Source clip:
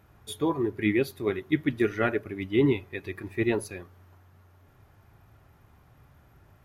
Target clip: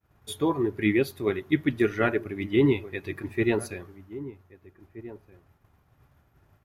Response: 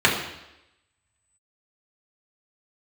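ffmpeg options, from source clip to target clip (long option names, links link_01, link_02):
-filter_complex "[0:a]agate=range=-33dB:threshold=-50dB:ratio=3:detection=peak,asplit=2[link_01][link_02];[link_02]adelay=1574,volume=-16dB,highshelf=frequency=4000:gain=-35.4[link_03];[link_01][link_03]amix=inputs=2:normalize=0,volume=1.5dB"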